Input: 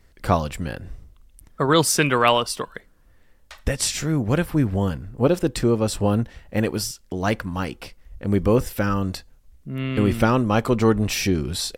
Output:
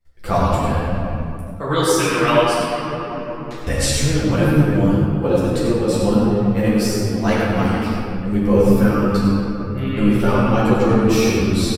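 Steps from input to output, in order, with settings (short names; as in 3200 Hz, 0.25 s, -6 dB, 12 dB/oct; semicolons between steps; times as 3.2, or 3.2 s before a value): gate -52 dBFS, range -18 dB; shoebox room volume 130 m³, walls hard, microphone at 0.79 m; AGC gain up to 4 dB; on a send: echo 96 ms -7.5 dB; on the sum: ensemble effect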